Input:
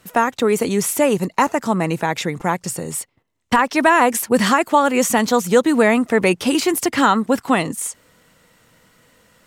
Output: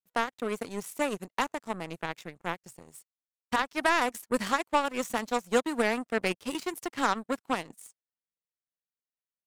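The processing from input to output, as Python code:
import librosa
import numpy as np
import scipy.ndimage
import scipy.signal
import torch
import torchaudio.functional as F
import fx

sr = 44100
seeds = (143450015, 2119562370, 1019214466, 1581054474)

y = fx.power_curve(x, sr, exponent=2.0)
y = F.gain(torch.from_numpy(y), -7.0).numpy()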